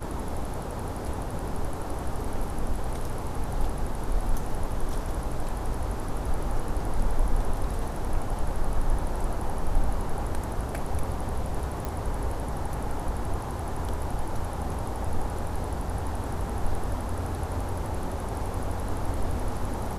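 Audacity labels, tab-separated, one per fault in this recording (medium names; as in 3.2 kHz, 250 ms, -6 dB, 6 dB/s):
11.850000	11.850000	pop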